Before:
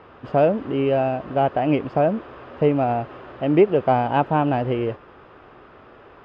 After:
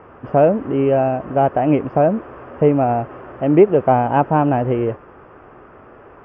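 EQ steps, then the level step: boxcar filter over 11 samples; +4.5 dB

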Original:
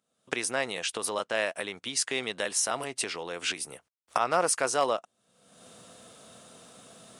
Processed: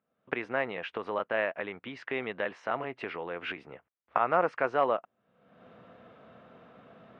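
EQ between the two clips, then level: low-pass 2.3 kHz 24 dB/octave; 0.0 dB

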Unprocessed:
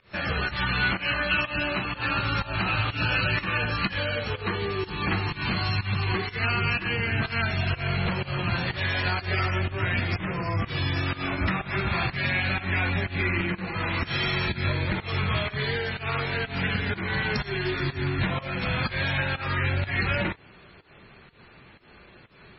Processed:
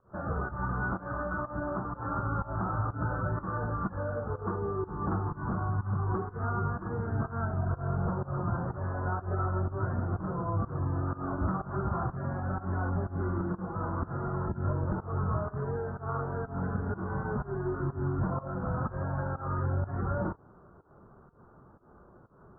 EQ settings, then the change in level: steep low-pass 1.4 kHz 72 dB/octave; -3.0 dB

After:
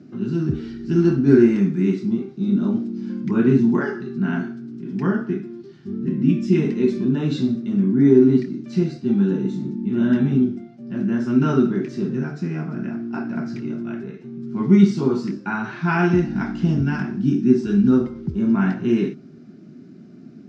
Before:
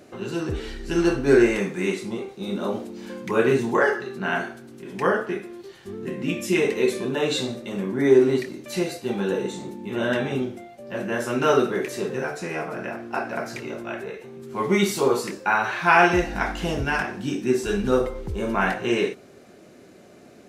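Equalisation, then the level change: cabinet simulation 110–6200 Hz, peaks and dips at 150 Hz +9 dB, 380 Hz +6 dB, 640 Hz +7 dB, 1.4 kHz +7 dB, 5.1 kHz +6 dB; dynamic bell 920 Hz, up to +5 dB, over -38 dBFS, Q 5.4; resonant low shelf 360 Hz +13.5 dB, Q 3; -10.0 dB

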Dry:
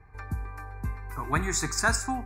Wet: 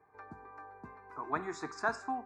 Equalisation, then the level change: high-pass 400 Hz 12 dB/octave; tape spacing loss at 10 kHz 34 dB; peaking EQ 2.2 kHz -7 dB 1.1 oct; 0.0 dB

